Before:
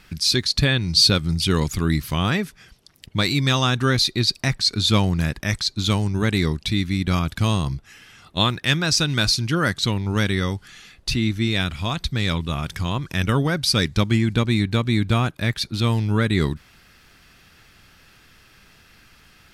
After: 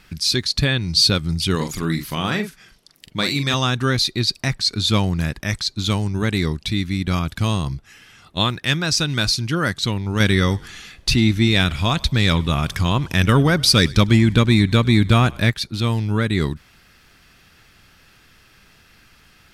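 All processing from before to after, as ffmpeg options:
-filter_complex "[0:a]asettb=1/sr,asplit=3[a][b][c];[a]atrim=end=1.554[d];[b]atrim=start=1.55:end=3.54,asetpts=PTS-STARTPTS,afade=t=in:d=0.004:c=qsin,afade=t=out:st=1.986:d=0.004:c=qsin,equalizer=f=75:t=o:w=1.2:g=-12.5,asplit=2[e][f];[f]adelay=43,volume=-7dB[g];[e][g]amix=inputs=2:normalize=0,atrim=end_sample=87759[h];[c]atrim=start=3.536[i];[d][h]acrossfade=d=0.004:c1=hsin:c2=qsin[j];[j][i]acrossfade=d=0.004:c1=qsin:c2=hsin,asettb=1/sr,asplit=3[k][l][m];[k]atrim=end=10.204[n];[l]atrim=start=10.2:end=15.5,asetpts=PTS-STARTPTS,afade=t=in:d=0.004:c=qsin,afade=t=out:st=5.296:d=0.004:c=qsin,acontrast=47,asplit=4[o][p][q][r];[p]adelay=101,afreqshift=-50,volume=-23.5dB[s];[q]adelay=202,afreqshift=-100,volume=-29.9dB[t];[r]adelay=303,afreqshift=-150,volume=-36.3dB[u];[o][s][t][u]amix=inputs=4:normalize=0,atrim=end_sample=233730[v];[m]atrim=start=15.496[w];[n][v]acrossfade=d=0.004:c1=hsin:c2=qsin[x];[x][w]acrossfade=d=0.004:c1=qsin:c2=hsin"

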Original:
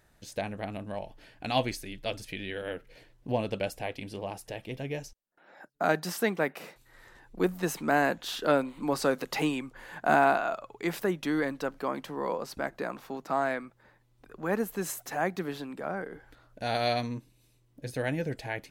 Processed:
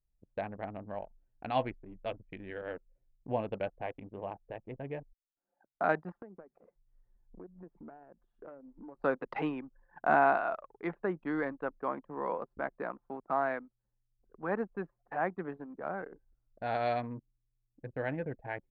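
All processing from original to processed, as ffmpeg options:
-filter_complex "[0:a]asettb=1/sr,asplit=3[a][b][c];[a]atrim=end=6.224[d];[b]atrim=start=6.22:end=9,asetpts=PTS-STARTPTS,afade=t=in:d=0.004:c=qsin,afade=t=out:st=2.776:d=0.004:c=qsin,lowshelf=f=360:g=3.5,bandreject=f=50:t=h:w=6,bandreject=f=100:t=h:w=6,bandreject=f=150:t=h:w=6,acompressor=threshold=-40dB:ratio=6:attack=3.2:release=140:knee=1:detection=peak[e];[c]atrim=start=8.996[f];[d][e]acrossfade=d=0.004:c1=hsin:c2=qsin[g];[g][f]acrossfade=d=0.004:c1=qsin:c2=hsin,lowpass=1.2k,anlmdn=0.631,tiltshelf=f=940:g=-6.5"

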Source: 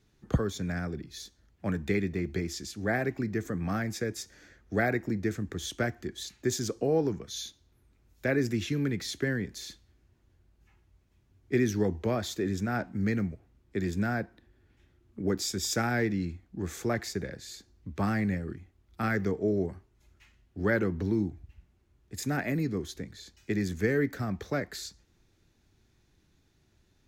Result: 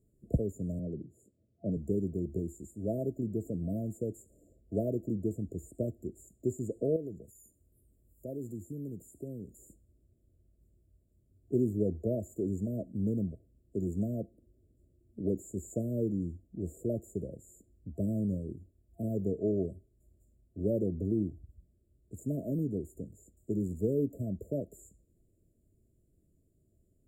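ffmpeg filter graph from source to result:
-filter_complex "[0:a]asettb=1/sr,asplit=3[a][b][c];[a]atrim=end=0.794[d];[b]atrim=start=0.79:end=1.77,asetpts=PTS-STARTPTS,afade=t=in:d=0.004:c=qsin,afade=t=out:st=0.976:d=0.004:c=qsin,highpass=f=94:w=0.5412,highpass=f=94:w=1.3066,aemphasis=mode=reproduction:type=75fm[e];[c]atrim=start=1.766[f];[d][e]acrossfade=d=0.004:c1=hsin:c2=qsin[g];[g][f]acrossfade=d=0.004:c1=qsin:c2=hsin,asettb=1/sr,asplit=3[h][i][j];[h]atrim=end=6.964[k];[i]atrim=start=6.96:end=9.59,asetpts=PTS-STARTPTS,afade=t=in:d=0.004:c=qsin,afade=t=out:st=2.626:d=0.004:c=qsin,highshelf=f=6.1k:g=9,acompressor=threshold=-49dB:ratio=1.5:attack=3.2:release=140:knee=1:detection=peak[l];[j]atrim=start=9.586[m];[k][l]acrossfade=d=0.004:c1=hsin:c2=qsin[n];[n][m]acrossfade=d=0.004:c1=qsin:c2=hsin,afftfilt=real='re*(1-between(b*sr/4096,680,6900))':imag='im*(1-between(b*sr/4096,680,6900))':win_size=4096:overlap=0.75,acrossover=split=5400[o][p];[p]acompressor=threshold=-54dB:ratio=4:attack=1:release=60[q];[o][q]amix=inputs=2:normalize=0,volume=-2.5dB"

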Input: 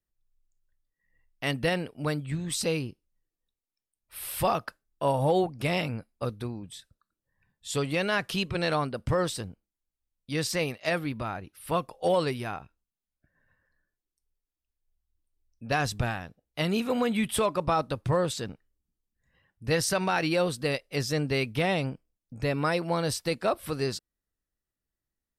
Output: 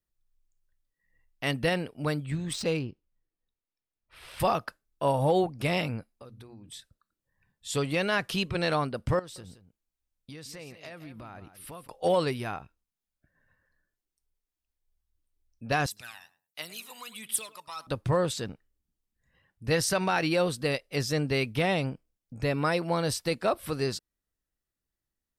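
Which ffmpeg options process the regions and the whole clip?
-filter_complex "[0:a]asettb=1/sr,asplit=3[a][b][c];[a]atrim=end=2.534[d];[b]atrim=start=2.53:end=4.4,asetpts=PTS-STARTPTS,afade=t=in:d=0.004:c=qsin,afade=t=out:st=1.866:d=0.004:c=qsin,highshelf=f=10k:g=-10.5,adynamicsmooth=sensitivity=6.5:basefreq=4.2k[e];[c]atrim=start=4.396[f];[d][e]acrossfade=d=0.004:c1=hsin:c2=qsin[g];[g][f]acrossfade=d=0.004:c1=qsin:c2=hsin,asettb=1/sr,asplit=3[h][i][j];[h]atrim=end=6.114[k];[i]atrim=start=6.11:end=6.69,asetpts=PTS-STARTPTS,afade=t=in:d=0.004:c=qsin,afade=t=out:st=0.576:d=0.004:c=qsin,bandreject=f=60:t=h:w=6,bandreject=f=120:t=h:w=6,bandreject=f=180:t=h:w=6,bandreject=f=240:t=h:w=6,bandreject=f=300:t=h:w=6,acompressor=threshold=-45dB:ratio=6:attack=3.2:release=140:knee=1:detection=peak[l];[j]atrim=start=6.686[m];[k][l]acrossfade=d=0.004:c1=hsin:c2=qsin[n];[n][m]acrossfade=d=0.004:c1=qsin:c2=hsin,asettb=1/sr,asplit=3[o][p][q];[o]atrim=end=9.194[r];[p]atrim=start=9.19:end=11.88,asetpts=PTS-STARTPTS,afade=t=in:d=0.004:c=qsin,afade=t=out:st=2.686:d=0.004:c=qsin,acompressor=threshold=-41dB:ratio=6:attack=3.2:release=140:knee=1:detection=peak,aecho=1:1:170:0.251,atrim=end_sample=118629[s];[q]atrim=start=11.876[t];[r][s]acrossfade=d=0.004:c1=hsin:c2=qsin[u];[u][t]acrossfade=d=0.004:c1=qsin:c2=hsin,asettb=1/sr,asplit=3[v][w][x];[v]atrim=end=15.864[y];[w]atrim=start=15.86:end=17.87,asetpts=PTS-STARTPTS,afade=t=in:d=0.004:c=qsin,afade=t=out:st=2.006:d=0.004:c=qsin,aderivative,aphaser=in_gain=1:out_gain=1:delay=1.1:decay=0.62:speed=1.4:type=sinusoidal,asplit=2[z][aa];[aa]adelay=105,lowpass=f=1.4k:p=1,volume=-14dB,asplit=2[ab][ac];[ac]adelay=105,lowpass=f=1.4k:p=1,volume=0.22[ad];[z][ab][ad]amix=inputs=3:normalize=0,atrim=end_sample=88641[ae];[x]atrim=start=17.866[af];[y][ae]acrossfade=d=0.004:c1=hsin:c2=qsin[ag];[ag][af]acrossfade=d=0.004:c1=qsin:c2=hsin"

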